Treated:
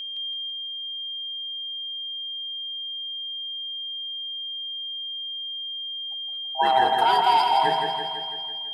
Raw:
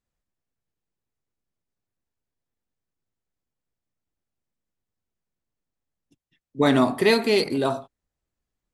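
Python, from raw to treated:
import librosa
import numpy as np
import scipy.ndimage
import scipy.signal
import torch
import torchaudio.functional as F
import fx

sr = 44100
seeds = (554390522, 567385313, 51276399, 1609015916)

p1 = fx.band_swap(x, sr, width_hz=500)
p2 = scipy.signal.sosfilt(scipy.signal.cheby1(2, 1.0, 470.0, 'highpass', fs=sr, output='sos'), p1)
p3 = fx.high_shelf(p2, sr, hz=2300.0, db=-10.5)
p4 = fx.over_compress(p3, sr, threshold_db=-24.0, ratio=-1.0)
p5 = p3 + F.gain(torch.from_numpy(p4), 1.5).numpy()
p6 = p5 + 10.0 ** (-27.0 / 20.0) * np.sin(2.0 * np.pi * 3200.0 * np.arange(len(p5)) / sr)
p7 = p6 + fx.echo_feedback(p6, sr, ms=166, feedback_pct=58, wet_db=-4.5, dry=0)
y = F.gain(torch.from_numpy(p7), -4.0).numpy()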